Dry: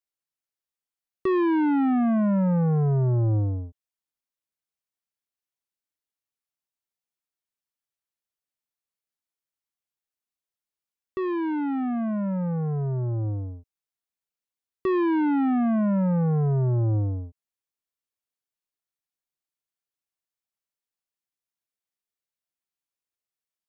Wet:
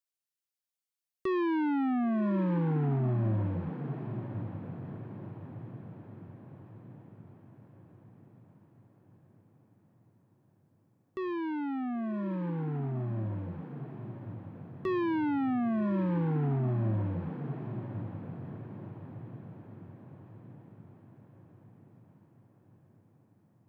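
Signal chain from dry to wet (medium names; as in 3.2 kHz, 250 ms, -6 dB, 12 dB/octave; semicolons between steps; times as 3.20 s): treble shelf 2.5 kHz +7.5 dB; on a send: echo that smears into a reverb 1057 ms, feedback 54%, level -9 dB; on the sum: trim -7.5 dB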